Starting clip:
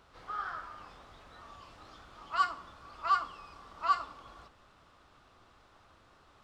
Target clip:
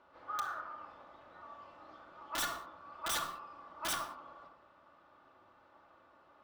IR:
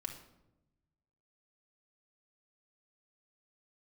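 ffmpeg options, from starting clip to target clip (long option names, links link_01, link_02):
-filter_complex "[0:a]bandpass=frequency=730:width_type=q:width=0.73:csg=0,aeval=exprs='(mod(29.9*val(0)+1,2)-1)/29.9':channel_layout=same[link_01];[1:a]atrim=start_sample=2205,afade=type=out:start_time=0.26:duration=0.01,atrim=end_sample=11907[link_02];[link_01][link_02]afir=irnorm=-1:irlink=0,volume=2.5dB"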